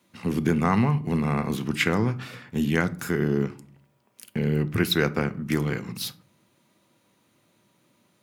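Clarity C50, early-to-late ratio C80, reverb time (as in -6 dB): 19.0 dB, 24.5 dB, 0.45 s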